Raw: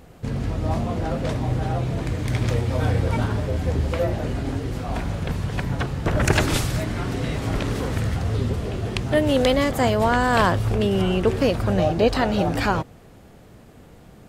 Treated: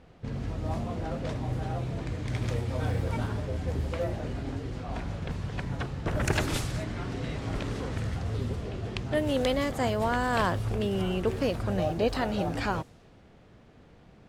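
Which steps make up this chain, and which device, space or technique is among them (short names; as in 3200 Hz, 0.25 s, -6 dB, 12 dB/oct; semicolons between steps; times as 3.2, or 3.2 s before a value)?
cassette deck with a dynamic noise filter (white noise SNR 31 dB; low-pass opened by the level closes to 2800 Hz, open at -16 dBFS); gain -8 dB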